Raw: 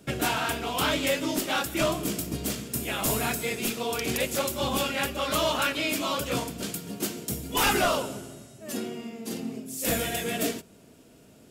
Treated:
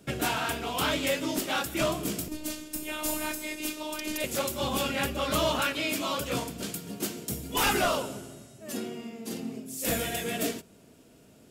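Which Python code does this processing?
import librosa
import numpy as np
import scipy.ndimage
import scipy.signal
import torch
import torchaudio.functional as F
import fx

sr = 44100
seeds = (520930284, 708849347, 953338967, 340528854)

y = fx.robotise(x, sr, hz=306.0, at=(2.28, 4.24))
y = fx.low_shelf(y, sr, hz=340.0, db=5.5, at=(4.84, 5.61))
y = y * librosa.db_to_amplitude(-2.0)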